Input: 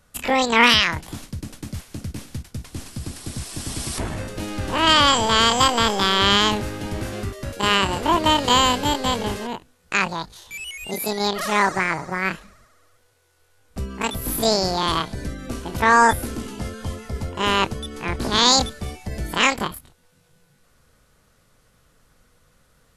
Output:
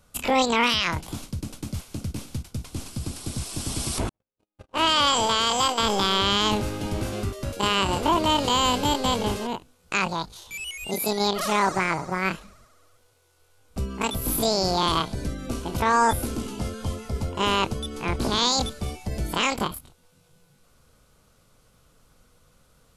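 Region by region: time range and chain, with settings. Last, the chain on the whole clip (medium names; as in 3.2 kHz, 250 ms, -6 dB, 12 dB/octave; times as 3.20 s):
4.09–5.83 s: gate -23 dBFS, range -59 dB + bass shelf 270 Hz -8.5 dB + tape noise reduction on one side only decoder only
whole clip: peaking EQ 1.8 kHz -8.5 dB 0.35 oct; peak limiter -11 dBFS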